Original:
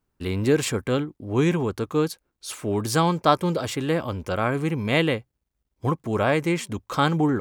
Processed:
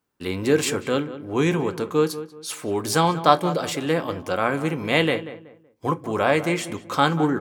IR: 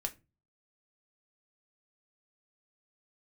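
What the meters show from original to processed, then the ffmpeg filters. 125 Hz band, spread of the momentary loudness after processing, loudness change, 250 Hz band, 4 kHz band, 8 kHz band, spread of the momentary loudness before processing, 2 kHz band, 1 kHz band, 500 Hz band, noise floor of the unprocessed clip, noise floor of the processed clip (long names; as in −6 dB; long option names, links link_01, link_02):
−2.5 dB, 9 LU, +1.0 dB, 0.0 dB, +2.5 dB, +2.5 dB, 8 LU, +2.5 dB, +3.0 dB, +2.0 dB, −79 dBFS, −57 dBFS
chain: -filter_complex "[0:a]highpass=frequency=290:poles=1,asplit=2[link_01][link_02];[link_02]adelay=188,lowpass=frequency=1800:poles=1,volume=-13dB,asplit=2[link_03][link_04];[link_04]adelay=188,lowpass=frequency=1800:poles=1,volume=0.3,asplit=2[link_05][link_06];[link_06]adelay=188,lowpass=frequency=1800:poles=1,volume=0.3[link_07];[link_01][link_03][link_05][link_07]amix=inputs=4:normalize=0,asplit=2[link_08][link_09];[1:a]atrim=start_sample=2205[link_10];[link_09][link_10]afir=irnorm=-1:irlink=0,volume=2.5dB[link_11];[link_08][link_11]amix=inputs=2:normalize=0,volume=-4.5dB"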